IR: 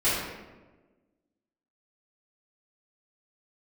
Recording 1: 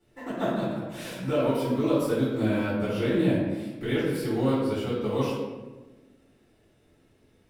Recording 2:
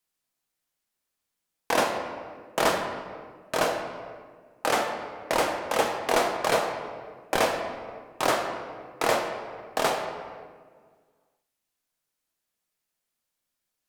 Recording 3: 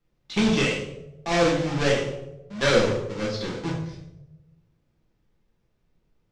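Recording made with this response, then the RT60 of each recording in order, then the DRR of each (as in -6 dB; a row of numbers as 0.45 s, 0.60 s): 1; 1.3 s, 1.7 s, 0.95 s; -14.0 dB, 2.5 dB, -4.0 dB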